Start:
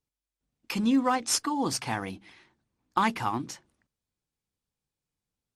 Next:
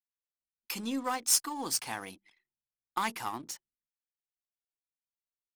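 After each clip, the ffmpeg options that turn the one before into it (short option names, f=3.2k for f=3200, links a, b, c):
-af "aeval=exprs='if(lt(val(0),0),0.708*val(0),val(0))':c=same,aemphasis=mode=production:type=bsi,anlmdn=0.00631,volume=-5.5dB"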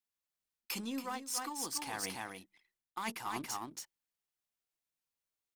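-af "aecho=1:1:280:0.422,areverse,acompressor=threshold=-38dB:ratio=12,areverse,volume=3dB"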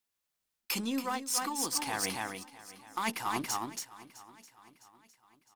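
-af "aecho=1:1:658|1316|1974|2632:0.119|0.0535|0.0241|0.0108,volume=6dB"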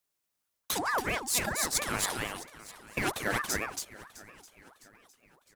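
-af "equalizer=f=2.8k:t=o:w=1.3:g=-4.5,aeval=exprs='val(0)*sin(2*PI*1000*n/s+1000*0.5/4.4*sin(2*PI*4.4*n/s))':c=same,volume=6dB"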